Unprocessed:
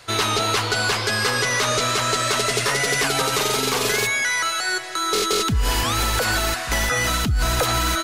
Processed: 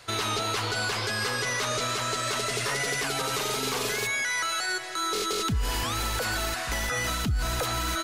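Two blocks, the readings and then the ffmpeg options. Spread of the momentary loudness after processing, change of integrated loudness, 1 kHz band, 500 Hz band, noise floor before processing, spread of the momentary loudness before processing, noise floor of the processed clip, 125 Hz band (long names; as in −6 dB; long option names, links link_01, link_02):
2 LU, −7.5 dB, −7.5 dB, −8.0 dB, −26 dBFS, 2 LU, −32 dBFS, −7.0 dB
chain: -af "alimiter=limit=-16dB:level=0:latency=1:release=52,volume=-4dB"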